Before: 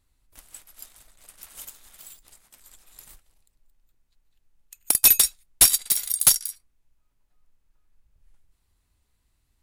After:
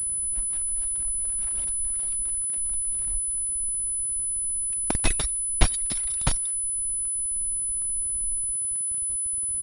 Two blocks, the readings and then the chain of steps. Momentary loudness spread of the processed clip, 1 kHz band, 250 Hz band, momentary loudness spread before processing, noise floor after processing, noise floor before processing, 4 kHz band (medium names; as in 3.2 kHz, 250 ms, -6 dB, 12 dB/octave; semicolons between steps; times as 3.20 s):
1 LU, +3.5 dB, +9.5 dB, 8 LU, -28 dBFS, -72 dBFS, -9.0 dB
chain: tilt EQ -3.5 dB/octave; speakerphone echo 160 ms, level -25 dB; in parallel at -3 dB: compression 16:1, threshold -44 dBFS, peak gain reduction 32 dB; on the sum: small samples zeroed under -44.5 dBFS; on a send: delay 92 ms -21.5 dB; on the sum: reverb removal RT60 0.68 s; class-D stage that switches slowly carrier 10 kHz; trim +1.5 dB